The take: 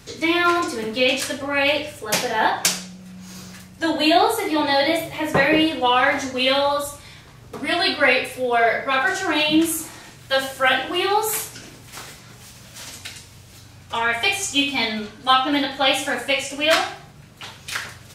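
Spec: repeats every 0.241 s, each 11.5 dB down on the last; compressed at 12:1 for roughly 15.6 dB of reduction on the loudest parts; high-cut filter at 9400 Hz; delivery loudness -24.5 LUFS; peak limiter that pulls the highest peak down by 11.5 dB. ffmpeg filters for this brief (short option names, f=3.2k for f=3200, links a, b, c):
-af "lowpass=9.4k,acompressor=threshold=-28dB:ratio=12,alimiter=limit=-24dB:level=0:latency=1,aecho=1:1:241|482|723:0.266|0.0718|0.0194,volume=9.5dB"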